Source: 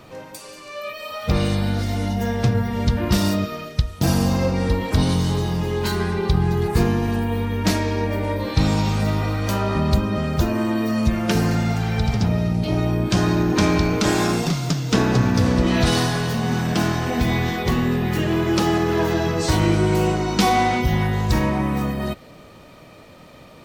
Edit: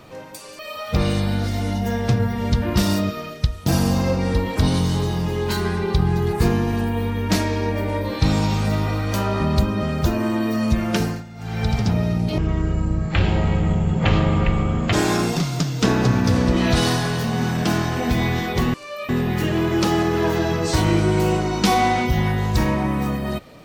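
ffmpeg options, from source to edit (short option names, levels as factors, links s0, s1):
-filter_complex "[0:a]asplit=8[s0][s1][s2][s3][s4][s5][s6][s7];[s0]atrim=end=0.592[s8];[s1]atrim=start=0.938:end=11.59,asetpts=PTS-STARTPTS,afade=t=out:st=10.352:d=0.3:silence=0.125893[s9];[s2]atrim=start=11.59:end=11.71,asetpts=PTS-STARTPTS,volume=0.126[s10];[s3]atrim=start=11.71:end=12.734,asetpts=PTS-STARTPTS,afade=t=in:d=0.3:silence=0.125893[s11];[s4]atrim=start=12.73:end=14.03,asetpts=PTS-STARTPTS,asetrate=22491,aresample=44100[s12];[s5]atrim=start=14.026:end=17.842[s13];[s6]atrim=start=0.588:end=0.942[s14];[s7]atrim=start=17.838[s15];[s9][s10][s11]concat=n=3:v=0:a=1[s16];[s8][s16]acrossfade=d=0.004:c1=hsin:c2=hsin[s17];[s17][s12]acrossfade=d=0.004:c1=hsin:c2=hsin[s18];[s18][s13]acrossfade=d=0.004:c1=hsin:c2=hsin[s19];[s19][s14]acrossfade=d=0.004:c1=hsin:c2=hsin[s20];[s20][s15]acrossfade=d=0.004:c1=hsin:c2=hsin"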